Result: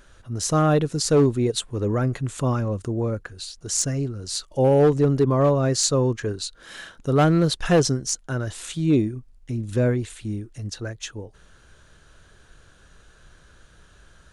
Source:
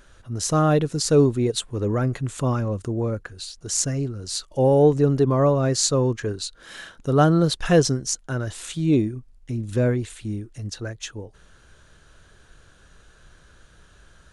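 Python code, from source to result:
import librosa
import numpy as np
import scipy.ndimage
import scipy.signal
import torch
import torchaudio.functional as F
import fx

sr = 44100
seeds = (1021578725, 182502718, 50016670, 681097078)

y = np.clip(x, -10.0 ** (-11.5 / 20.0), 10.0 ** (-11.5 / 20.0))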